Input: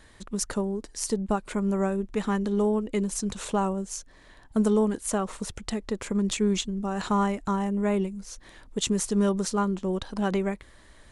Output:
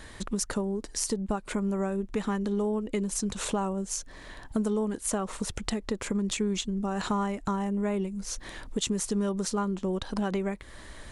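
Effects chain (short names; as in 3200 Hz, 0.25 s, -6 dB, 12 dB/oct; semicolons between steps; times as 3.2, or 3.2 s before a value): compressor 3:1, threshold -38 dBFS, peak gain reduction 14 dB; gain +8 dB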